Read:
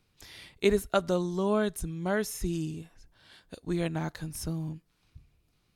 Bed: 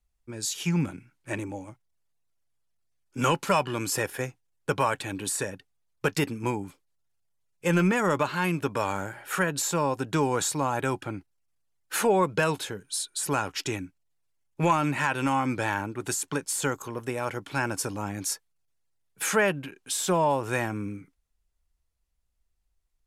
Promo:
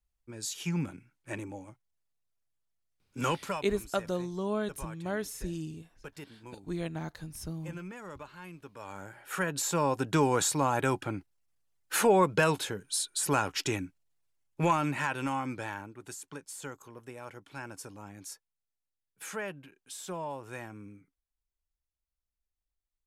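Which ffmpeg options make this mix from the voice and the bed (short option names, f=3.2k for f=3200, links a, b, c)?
-filter_complex "[0:a]adelay=3000,volume=-5dB[a];[1:a]volume=13.5dB,afade=t=out:st=3.38:d=0.27:silence=0.199526,afade=t=in:st=8.76:d=1.29:silence=0.105925,afade=t=out:st=13.97:d=2.03:silence=0.211349[b];[a][b]amix=inputs=2:normalize=0"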